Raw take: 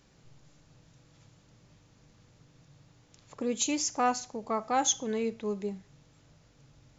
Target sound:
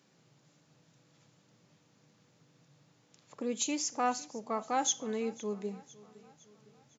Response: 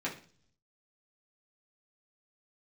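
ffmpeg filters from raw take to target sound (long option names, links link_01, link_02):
-filter_complex "[0:a]highpass=frequency=140:width=0.5412,highpass=frequency=140:width=1.3066,asplit=2[link_01][link_02];[link_02]aecho=0:1:508|1016|1524|2032:0.0891|0.0463|0.0241|0.0125[link_03];[link_01][link_03]amix=inputs=2:normalize=0,volume=-3.5dB"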